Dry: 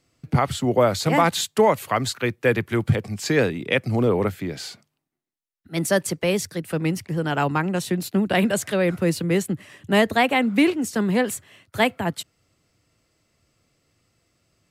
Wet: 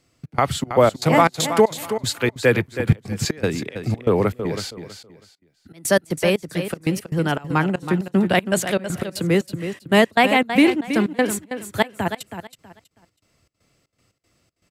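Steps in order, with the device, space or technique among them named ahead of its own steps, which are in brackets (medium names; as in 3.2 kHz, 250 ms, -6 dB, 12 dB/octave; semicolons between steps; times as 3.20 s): trance gate with a delay (trance gate "xx.xx.x." 118 bpm -24 dB; feedback delay 323 ms, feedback 25%, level -10 dB); trim +3 dB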